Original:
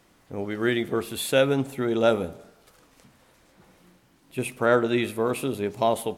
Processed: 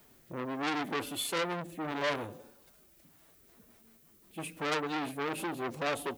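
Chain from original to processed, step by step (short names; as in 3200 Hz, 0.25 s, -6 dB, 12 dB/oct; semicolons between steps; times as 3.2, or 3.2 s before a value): formant-preserving pitch shift +4 st; rotary speaker horn 0.75 Hz, later 6 Hz, at 2.89; vocal rider within 4 dB 2 s; added noise violet -62 dBFS; core saturation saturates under 3700 Hz; gain -2 dB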